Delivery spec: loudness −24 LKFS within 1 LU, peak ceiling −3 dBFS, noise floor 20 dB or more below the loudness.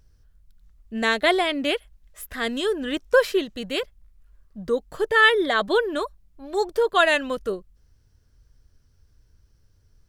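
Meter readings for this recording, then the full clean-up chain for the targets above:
integrated loudness −22.5 LKFS; sample peak −5.0 dBFS; target loudness −24.0 LKFS
→ level −1.5 dB

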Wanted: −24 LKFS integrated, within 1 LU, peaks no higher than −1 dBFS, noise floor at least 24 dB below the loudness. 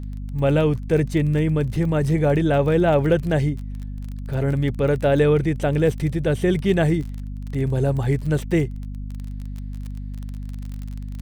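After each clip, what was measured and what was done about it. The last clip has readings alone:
crackle rate 30 per second; mains hum 50 Hz; hum harmonics up to 250 Hz; level of the hum −28 dBFS; integrated loudness −21.0 LKFS; sample peak −6.5 dBFS; target loudness −24.0 LKFS
→ click removal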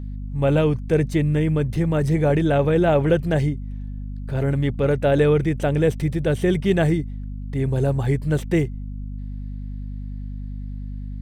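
crackle rate 0.80 per second; mains hum 50 Hz; hum harmonics up to 250 Hz; level of the hum −28 dBFS
→ mains-hum notches 50/100/150/200/250 Hz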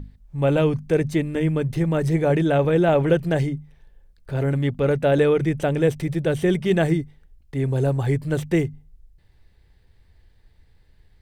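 mains hum none found; integrated loudness −21.5 LKFS; sample peak −6.0 dBFS; target loudness −24.0 LKFS
→ level −2.5 dB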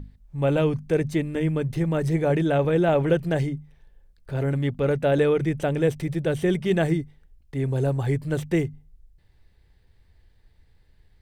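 integrated loudness −24.0 LKFS; sample peak −8.5 dBFS; background noise floor −59 dBFS

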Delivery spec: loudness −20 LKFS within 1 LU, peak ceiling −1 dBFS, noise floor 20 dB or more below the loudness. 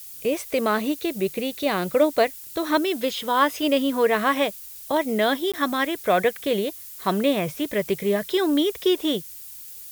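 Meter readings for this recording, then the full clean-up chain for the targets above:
number of dropouts 1; longest dropout 16 ms; background noise floor −40 dBFS; target noise floor −44 dBFS; integrated loudness −23.5 LKFS; sample peak −7.0 dBFS; target loudness −20.0 LKFS
→ repair the gap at 0:05.52, 16 ms
noise reduction from a noise print 6 dB
level +3.5 dB

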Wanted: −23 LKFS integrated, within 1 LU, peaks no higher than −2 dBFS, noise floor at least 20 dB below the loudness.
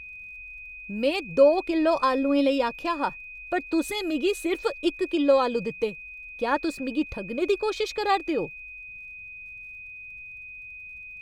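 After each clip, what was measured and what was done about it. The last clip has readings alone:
crackle rate 36 per second; interfering tone 2,500 Hz; level of the tone −39 dBFS; integrated loudness −25.5 LKFS; sample peak −7.5 dBFS; target loudness −23.0 LKFS
→ click removal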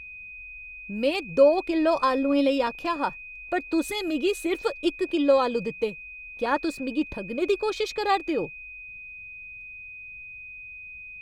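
crackle rate 0.71 per second; interfering tone 2,500 Hz; level of the tone −39 dBFS
→ notch filter 2,500 Hz, Q 30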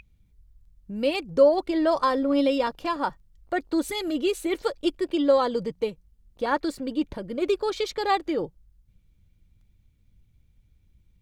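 interfering tone none found; integrated loudness −25.5 LKFS; sample peak −7.5 dBFS; target loudness −23.0 LKFS
→ level +2.5 dB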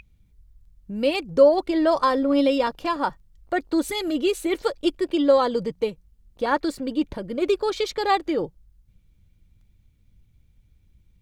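integrated loudness −23.0 LKFS; sample peak −5.0 dBFS; background noise floor −61 dBFS

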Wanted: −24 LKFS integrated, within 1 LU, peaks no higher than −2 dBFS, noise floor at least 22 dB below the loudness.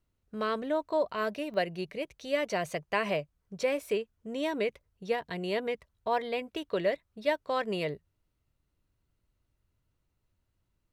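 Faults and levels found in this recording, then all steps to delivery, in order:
number of dropouts 1; longest dropout 1.7 ms; integrated loudness −32.5 LKFS; sample peak −15.0 dBFS; target loudness −24.0 LKFS
→ repair the gap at 0:01.54, 1.7 ms
level +8.5 dB

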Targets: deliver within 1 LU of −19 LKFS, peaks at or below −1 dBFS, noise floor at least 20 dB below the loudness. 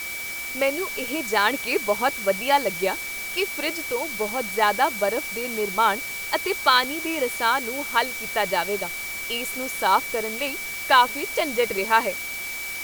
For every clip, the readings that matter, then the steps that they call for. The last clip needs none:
interfering tone 2,300 Hz; level of the tone −31 dBFS; background noise floor −32 dBFS; target noise floor −44 dBFS; integrated loudness −23.5 LKFS; sample peak −3.5 dBFS; target loudness −19.0 LKFS
→ notch filter 2,300 Hz, Q 30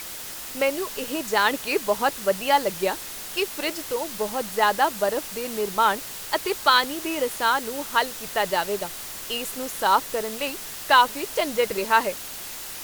interfering tone none found; background noise floor −36 dBFS; target noise floor −44 dBFS
→ noise reduction from a noise print 8 dB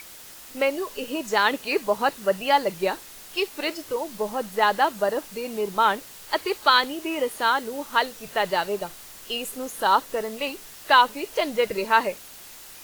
background noise floor −44 dBFS; target noise floor −45 dBFS
→ noise reduction from a noise print 6 dB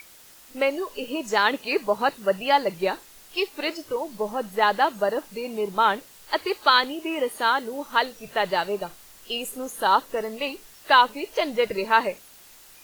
background noise floor −50 dBFS; integrated loudness −24.5 LKFS; sample peak −4.0 dBFS; target loudness −19.0 LKFS
→ level +5.5 dB
brickwall limiter −1 dBFS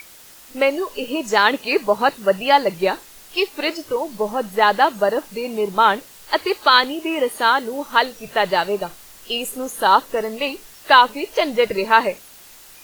integrated loudness −19.0 LKFS; sample peak −1.0 dBFS; background noise floor −44 dBFS

